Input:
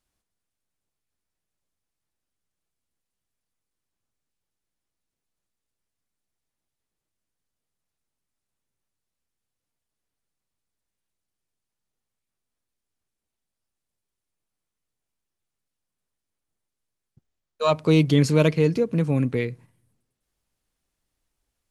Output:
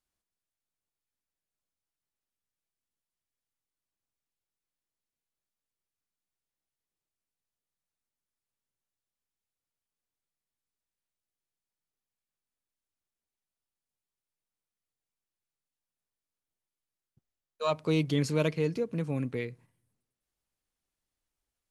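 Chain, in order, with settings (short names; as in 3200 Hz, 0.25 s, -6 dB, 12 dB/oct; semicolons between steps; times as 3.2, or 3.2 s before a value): low shelf 320 Hz -3.5 dB; gain -7.5 dB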